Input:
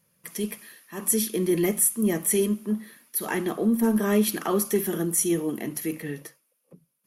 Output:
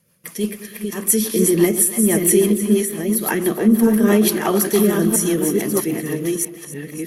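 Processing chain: chunks repeated in reverse 645 ms, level -4.5 dB; two-band feedback delay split 580 Hz, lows 103 ms, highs 288 ms, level -11 dB; rotary cabinet horn 6 Hz; trim +8.5 dB

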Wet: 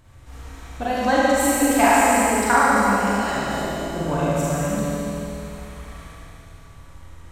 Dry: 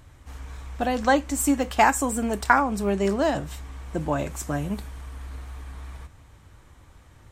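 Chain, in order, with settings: multi-head delay 73 ms, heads all three, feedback 62%, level -11 dB; spectral replace 2.85–3.61 s, 220–1300 Hz both; Schroeder reverb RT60 2.3 s, combs from 33 ms, DRR -7 dB; trim -3.5 dB

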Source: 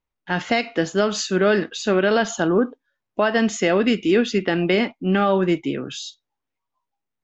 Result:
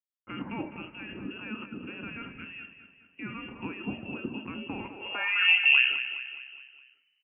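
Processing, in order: in parallel at +1 dB: compressor with a negative ratio -25 dBFS, ratio -0.5; on the sum: two-slope reverb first 0.25 s, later 4.3 s, from -20 dB, DRR 14.5 dB; hysteresis with a dead band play -37.5 dBFS; on a send: feedback delay 208 ms, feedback 50%, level -11 dB; on the sum: frequency inversion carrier 3 kHz; band-pass sweep 240 Hz -> 2.1 kHz, 4.87–5.50 s

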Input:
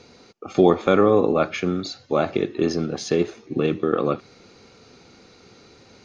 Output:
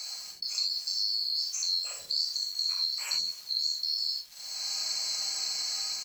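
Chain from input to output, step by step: split-band scrambler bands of 4 kHz; tilt EQ +4.5 dB/octave; level rider gain up to 8.5 dB; peak limiter -5.5 dBFS, peak gain reduction 5 dB; compression 6:1, threshold -32 dBFS, peak gain reduction 19 dB; small samples zeroed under -48.5 dBFS; bands offset in time highs, lows 130 ms, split 440 Hz; gated-style reverb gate 110 ms flat, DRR -1 dB

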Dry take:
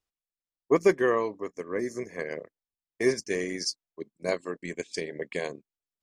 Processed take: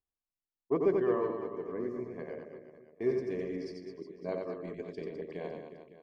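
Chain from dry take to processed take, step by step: peaking EQ 1.9 kHz -10.5 dB 0.96 oct; band-stop 510 Hz, Q 12; de-hum 51.14 Hz, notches 13; in parallel at -10.5 dB: hard clipper -19.5 dBFS, distortion -13 dB; on the sum: distance through air 430 m; reverse bouncing-ball echo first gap 90 ms, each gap 1.3×, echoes 5; trim -6.5 dB

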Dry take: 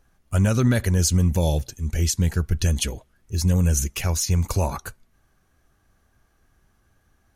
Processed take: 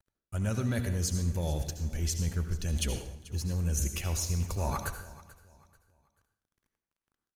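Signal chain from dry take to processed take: bass shelf 74 Hz +3.5 dB; reverse; compression 6:1, threshold -28 dBFS, peak gain reduction 14 dB; reverse; crossover distortion -52.5 dBFS; feedback delay 437 ms, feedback 32%, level -19 dB; reverberation RT60 0.60 s, pre-delay 65 ms, DRR 7 dB

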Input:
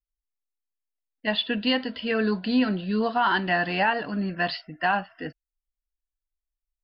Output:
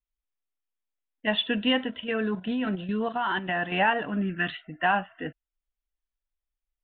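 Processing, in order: resampled via 8 kHz; 1.90–3.72 s: level held to a coarse grid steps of 9 dB; 4.22–4.65 s: time-frequency box 440–1200 Hz -12 dB

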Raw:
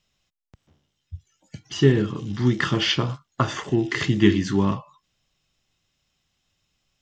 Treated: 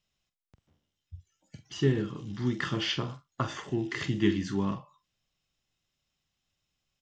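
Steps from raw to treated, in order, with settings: doubling 45 ms -11.5 dB; trim -9 dB

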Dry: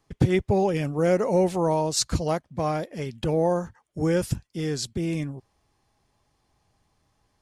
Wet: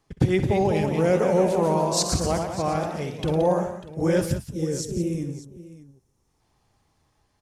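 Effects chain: time-frequency box 4.47–6.40 s, 550–5200 Hz -12 dB; ever faster or slower copies 230 ms, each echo +1 st, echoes 3, each echo -6 dB; multi-tap echo 63/174/596 ms -14/-11.5/-17 dB

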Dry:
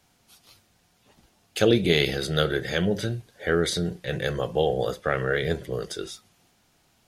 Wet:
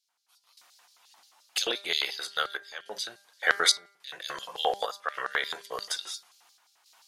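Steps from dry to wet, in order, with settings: random-step tremolo, depth 90%; LFO high-pass square 5.7 Hz 1–4.4 kHz; de-hum 199.7 Hz, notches 12; trim +5 dB

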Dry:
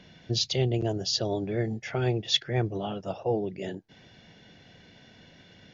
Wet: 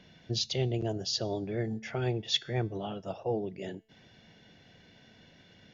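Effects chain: feedback comb 220 Hz, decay 0.61 s, harmonics all, mix 40%

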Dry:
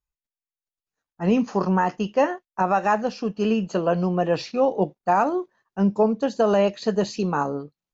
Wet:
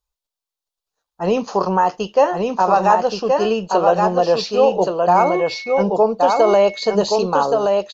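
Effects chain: graphic EQ 125/250/500/1000/2000/4000 Hz -7/-9/+4/+4/-8/+6 dB; in parallel at 0 dB: peak limiter -15 dBFS, peak gain reduction 8.5 dB; 5.16–5.81 s: on the sum: whistle 2.2 kHz -30 dBFS; on a send: delay 1124 ms -3.5 dB

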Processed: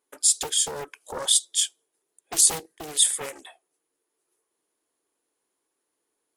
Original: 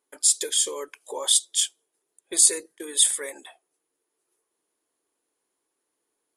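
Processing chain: loudspeaker Doppler distortion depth 0.86 ms

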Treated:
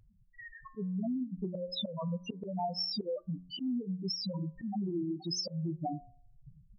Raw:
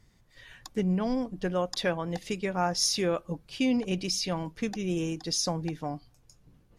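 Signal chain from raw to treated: loudest bins only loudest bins 2; bass shelf 100 Hz -10 dB; in parallel at +1 dB: gain riding 2 s; on the sum: slow attack 246 ms; compression 6:1, threshold -39 dBFS, peak gain reduction 14.5 dB; de-hum 89.89 Hz, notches 28; trim +6 dB

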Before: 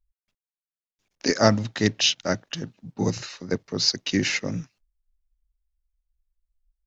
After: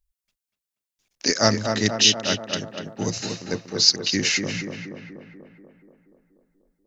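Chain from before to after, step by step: treble shelf 2.7 kHz +10.5 dB; on a send: tape echo 241 ms, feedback 70%, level -4 dB, low-pass 1.9 kHz; on the sum: trim -2.5 dB

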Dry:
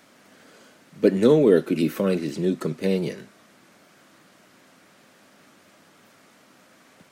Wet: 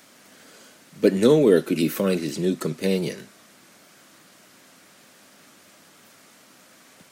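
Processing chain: treble shelf 3.6 kHz +9 dB

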